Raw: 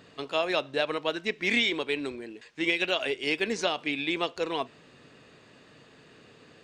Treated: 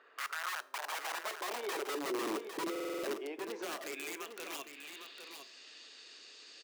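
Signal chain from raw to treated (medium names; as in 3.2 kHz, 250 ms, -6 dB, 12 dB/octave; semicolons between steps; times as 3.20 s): 0.84–1.77 s: waveshaping leveller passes 3; compression 4:1, threshold -39 dBFS, peak gain reduction 17.5 dB; peak limiter -31.5 dBFS, peak gain reduction 7 dB; gain riding within 5 dB 2 s; band-pass sweep 390 Hz -> 5.3 kHz, 2.54–5.49 s; integer overflow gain 43.5 dB; high-pass sweep 1.4 kHz -> 310 Hz, 0.23–2.28 s; delay 805 ms -8 dB; on a send at -16 dB: reverberation RT60 0.65 s, pre-delay 3 ms; on the sum: buffer glitch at 2.71 s, samples 2048, times 6; trim +8 dB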